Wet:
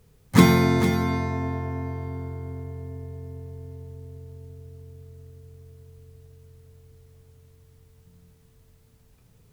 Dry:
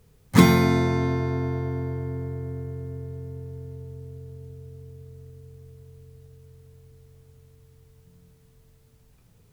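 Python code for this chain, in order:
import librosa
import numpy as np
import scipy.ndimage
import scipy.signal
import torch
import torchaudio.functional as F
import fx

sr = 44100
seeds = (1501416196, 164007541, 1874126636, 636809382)

y = x + 10.0 ** (-10.0 / 20.0) * np.pad(x, (int(452 * sr / 1000.0), 0))[:len(x)]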